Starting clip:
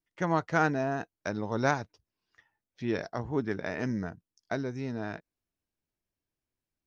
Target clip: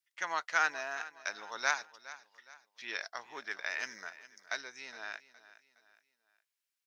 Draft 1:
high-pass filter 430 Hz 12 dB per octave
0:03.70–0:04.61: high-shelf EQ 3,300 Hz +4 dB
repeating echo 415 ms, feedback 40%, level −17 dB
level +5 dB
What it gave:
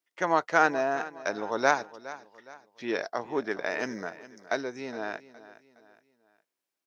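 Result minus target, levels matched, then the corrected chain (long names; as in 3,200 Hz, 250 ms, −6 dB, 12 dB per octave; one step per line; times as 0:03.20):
500 Hz band +10.0 dB
high-pass filter 1,700 Hz 12 dB per octave
0:03.70–0:04.61: high-shelf EQ 3,300 Hz +4 dB
repeating echo 415 ms, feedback 40%, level −17 dB
level +5 dB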